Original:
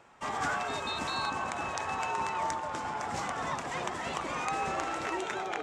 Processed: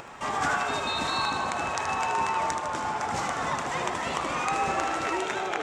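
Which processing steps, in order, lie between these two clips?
upward compressor, threshold -39 dBFS; on a send: thinning echo 77 ms, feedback 63%, level -7.5 dB; on the sum: trim +4.5 dB

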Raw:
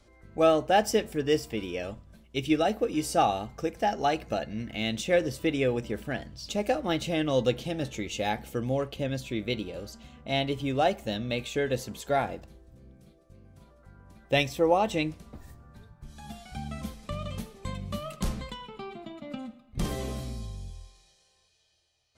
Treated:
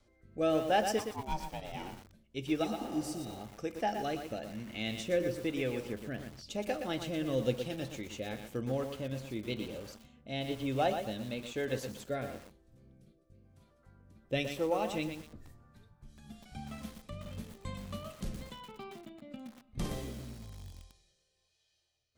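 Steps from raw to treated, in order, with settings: 2.66–3.38 s: spectral replace 390–3700 Hz after; rotary cabinet horn 1 Hz; 0.98–1.91 s: ring modulator 680 Hz -> 270 Hz; on a send at -16 dB: reverberation RT60 0.30 s, pre-delay 3 ms; on the sum: bit-crushed delay 119 ms, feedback 35%, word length 7-bit, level -6.5 dB; trim -5.5 dB

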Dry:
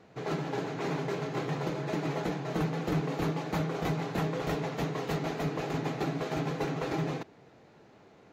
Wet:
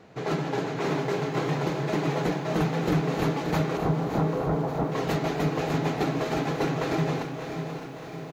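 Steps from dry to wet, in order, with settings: 3.77–4.92 s: low-pass 1.3 kHz 24 dB/octave; feedback delay 575 ms, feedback 59%, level -11.5 dB; bit-crushed delay 605 ms, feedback 55%, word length 10-bit, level -10.5 dB; trim +5 dB

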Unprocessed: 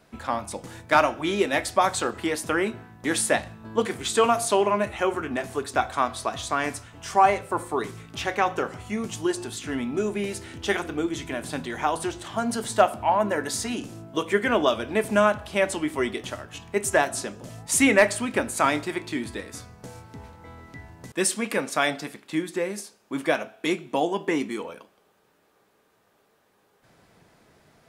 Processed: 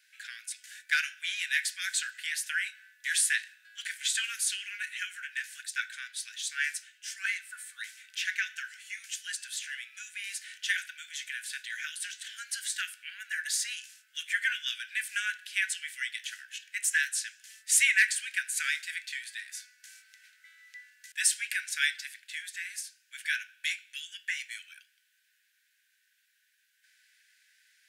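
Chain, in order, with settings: Chebyshev high-pass 1.5 kHz, order 8; 5.65–7.26 s: three bands expanded up and down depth 70%

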